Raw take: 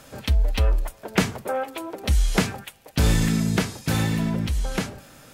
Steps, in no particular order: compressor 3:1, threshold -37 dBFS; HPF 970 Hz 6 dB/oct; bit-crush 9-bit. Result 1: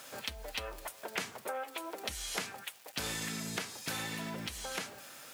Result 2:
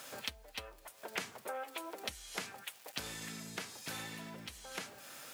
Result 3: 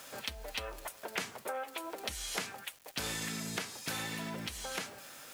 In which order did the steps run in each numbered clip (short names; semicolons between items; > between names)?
bit-crush > HPF > compressor; bit-crush > compressor > HPF; HPF > bit-crush > compressor